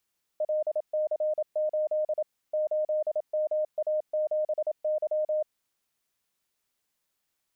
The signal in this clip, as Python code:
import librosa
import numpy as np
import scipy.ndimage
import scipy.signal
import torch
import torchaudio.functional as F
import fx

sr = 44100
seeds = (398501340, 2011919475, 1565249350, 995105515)

y = fx.morse(sr, text='LC8 8MA7Y', wpm=27, hz=614.0, level_db=-24.0)